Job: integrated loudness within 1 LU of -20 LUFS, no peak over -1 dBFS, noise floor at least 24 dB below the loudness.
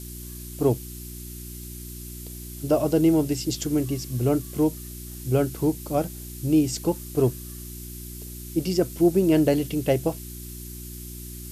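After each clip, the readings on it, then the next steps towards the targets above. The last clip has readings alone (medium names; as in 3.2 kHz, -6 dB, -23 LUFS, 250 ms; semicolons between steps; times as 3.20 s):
hum 60 Hz; highest harmonic 360 Hz; hum level -36 dBFS; noise floor -38 dBFS; noise floor target -48 dBFS; loudness -24.0 LUFS; peak level -8.5 dBFS; loudness target -20.0 LUFS
-> de-hum 60 Hz, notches 6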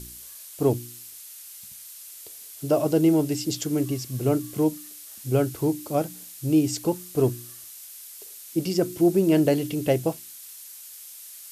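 hum not found; noise floor -43 dBFS; noise floor target -49 dBFS
-> noise reduction 6 dB, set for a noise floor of -43 dBFS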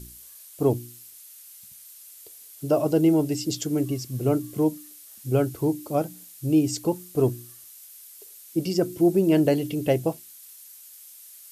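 noise floor -47 dBFS; noise floor target -49 dBFS
-> noise reduction 6 dB, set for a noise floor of -47 dBFS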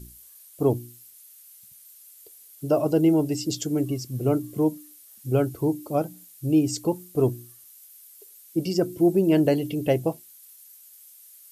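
noise floor -51 dBFS; loudness -24.5 LUFS; peak level -9.5 dBFS; loudness target -20.0 LUFS
-> trim +4.5 dB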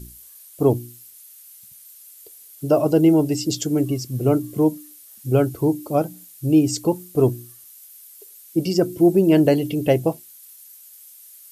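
loudness -20.0 LUFS; peak level -5.0 dBFS; noise floor -46 dBFS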